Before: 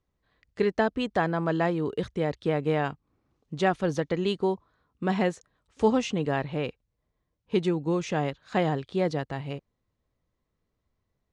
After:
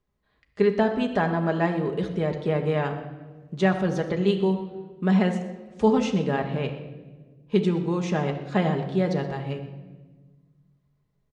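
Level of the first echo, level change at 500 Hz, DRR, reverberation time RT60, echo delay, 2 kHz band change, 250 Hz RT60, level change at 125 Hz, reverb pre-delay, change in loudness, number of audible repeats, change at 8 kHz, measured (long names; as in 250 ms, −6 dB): −17.0 dB, +2.5 dB, 3.0 dB, 1.3 s, 124 ms, +1.5 dB, 2.0 s, +5.0 dB, 5 ms, +3.0 dB, 1, can't be measured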